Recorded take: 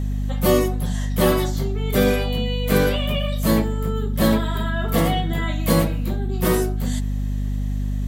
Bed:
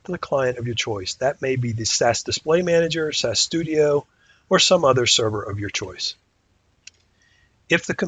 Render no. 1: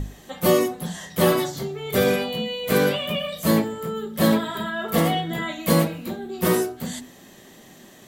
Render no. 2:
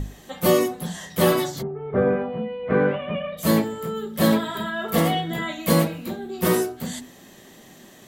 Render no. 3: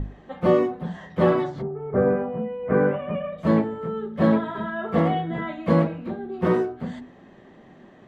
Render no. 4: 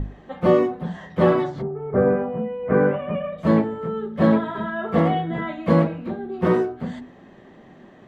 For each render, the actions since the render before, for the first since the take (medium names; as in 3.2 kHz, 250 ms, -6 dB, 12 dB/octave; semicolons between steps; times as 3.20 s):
hum notches 50/100/150/200/250/300 Hz
1.61–3.37 s: low-pass 1.3 kHz -> 2.3 kHz 24 dB/octave
low-pass 1.6 kHz 12 dB/octave
trim +2 dB